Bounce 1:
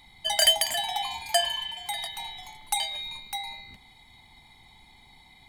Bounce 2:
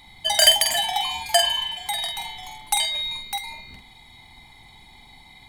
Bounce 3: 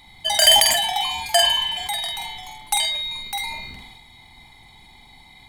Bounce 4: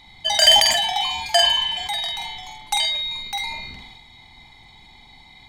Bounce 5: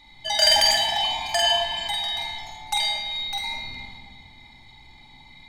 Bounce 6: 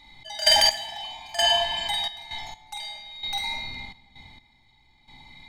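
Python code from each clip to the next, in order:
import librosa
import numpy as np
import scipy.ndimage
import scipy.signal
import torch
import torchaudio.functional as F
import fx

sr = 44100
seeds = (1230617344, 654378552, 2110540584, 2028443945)

y1 = fx.doubler(x, sr, ms=47.0, db=-6.0)
y1 = F.gain(torch.from_numpy(y1), 5.0).numpy()
y2 = fx.sustainer(y1, sr, db_per_s=34.0)
y3 = fx.high_shelf_res(y2, sr, hz=7800.0, db=-8.5, q=1.5)
y4 = fx.room_shoebox(y3, sr, seeds[0], volume_m3=3300.0, walls='mixed', distance_m=2.5)
y4 = F.gain(torch.from_numpy(y4), -6.0).numpy()
y5 = fx.step_gate(y4, sr, bpm=65, pattern='x.x...xx', floor_db=-12.0, edge_ms=4.5)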